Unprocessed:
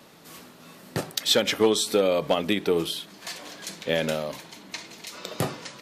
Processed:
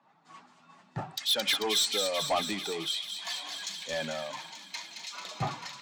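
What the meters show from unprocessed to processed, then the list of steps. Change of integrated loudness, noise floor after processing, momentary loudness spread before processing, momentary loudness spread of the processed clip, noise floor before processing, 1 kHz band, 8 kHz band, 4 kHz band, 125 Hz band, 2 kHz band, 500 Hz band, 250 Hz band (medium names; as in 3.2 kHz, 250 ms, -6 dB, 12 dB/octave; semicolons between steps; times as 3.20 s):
-5.5 dB, -62 dBFS, 16 LU, 15 LU, -51 dBFS, -2.0 dB, -2.5 dB, -1.0 dB, -6.5 dB, -4.0 dB, -11.0 dB, -12.0 dB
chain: spectral contrast enhancement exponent 1.6; resonant low shelf 640 Hz -8 dB, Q 3; in parallel at +2 dB: compression, threshold -44 dBFS, peak gain reduction 24.5 dB; on the sum: elliptic band-pass 110–7500 Hz; saturation -24 dBFS, distortion -10 dB; on a send: feedback echo behind a high-pass 221 ms, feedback 84%, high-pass 2.2 kHz, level -3.5 dB; on the sum: three bands expanded up and down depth 100%; trim -1.5 dB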